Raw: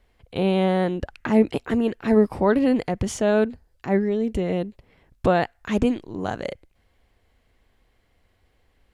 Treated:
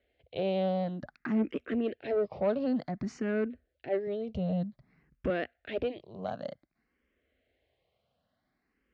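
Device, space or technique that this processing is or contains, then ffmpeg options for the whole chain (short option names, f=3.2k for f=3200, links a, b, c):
barber-pole phaser into a guitar amplifier: -filter_complex "[0:a]asplit=2[a][b];[b]afreqshift=0.54[c];[a][c]amix=inputs=2:normalize=1,asoftclip=type=tanh:threshold=-17dB,highpass=89,equalizer=f=100:t=q:w=4:g=-8,equalizer=f=250:t=q:w=4:g=3,equalizer=f=610:t=q:w=4:g=7,equalizer=f=930:t=q:w=4:g=-8,lowpass=f=4.6k:w=0.5412,lowpass=f=4.6k:w=1.3066,asettb=1/sr,asplit=3[d][e][f];[d]atrim=end=4.074[g];[e]atrim=start=4.07:end=5.3,asetpts=PTS-STARTPTS,afade=t=in:d=0.004:c=qsin,afade=t=out:st=1.226:d=0.004:c=qsin,lowshelf=f=190:t=q:w=1.5:g=7.5[h];[f]atrim=start=5.296[i];[g][h]acrossfade=d=0.004:c1=hsin:c2=qsin[j];[j][i]acrossfade=d=0.004:c1=qsin:c2=hsin,volume=-6.5dB"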